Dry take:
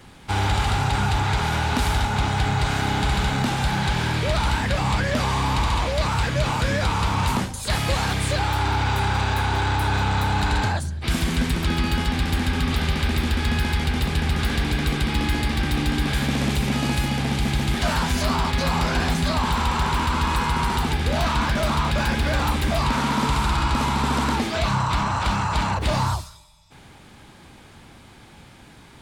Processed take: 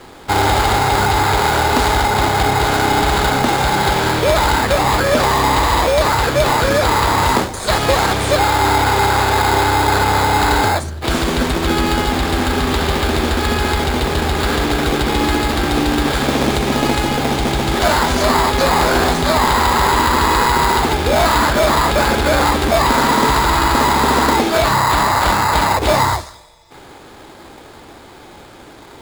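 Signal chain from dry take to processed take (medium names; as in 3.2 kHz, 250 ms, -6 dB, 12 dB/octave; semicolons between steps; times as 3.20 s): low-pass 9.5 kHz; resonant low shelf 260 Hz -9 dB, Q 1.5; in parallel at +1 dB: sample-and-hold 15×; on the sum: trim +5 dB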